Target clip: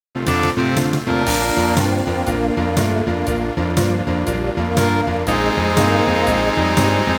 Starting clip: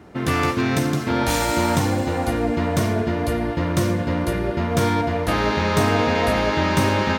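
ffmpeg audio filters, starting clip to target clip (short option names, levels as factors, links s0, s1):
-af "highpass=f=50:w=0.5412,highpass=f=50:w=1.3066,aeval=exprs='sgn(val(0))*max(abs(val(0))-0.0188,0)':c=same,volume=1.68"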